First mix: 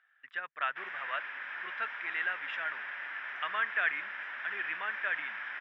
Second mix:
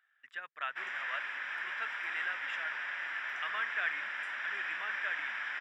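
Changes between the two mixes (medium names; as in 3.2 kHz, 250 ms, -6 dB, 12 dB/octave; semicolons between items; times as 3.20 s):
speech -6.5 dB; master: remove distance through air 230 m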